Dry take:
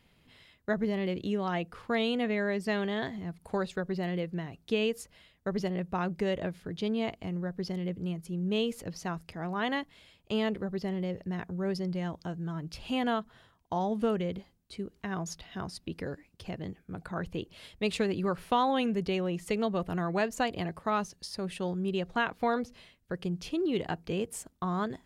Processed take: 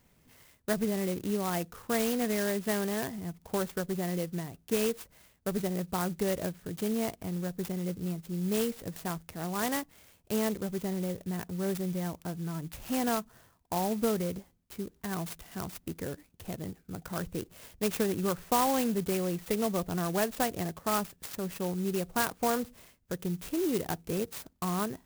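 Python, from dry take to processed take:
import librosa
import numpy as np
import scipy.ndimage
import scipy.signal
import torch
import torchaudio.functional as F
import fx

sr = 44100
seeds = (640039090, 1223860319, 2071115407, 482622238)

y = fx.clock_jitter(x, sr, seeds[0], jitter_ms=0.079)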